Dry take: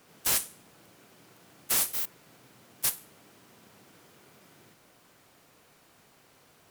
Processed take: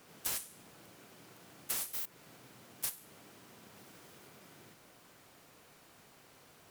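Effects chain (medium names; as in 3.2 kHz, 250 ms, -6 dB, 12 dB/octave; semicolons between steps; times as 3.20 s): 3.74–4.29 s: block-companded coder 3-bit; compression 5:1, threshold -35 dBFS, peak gain reduction 12 dB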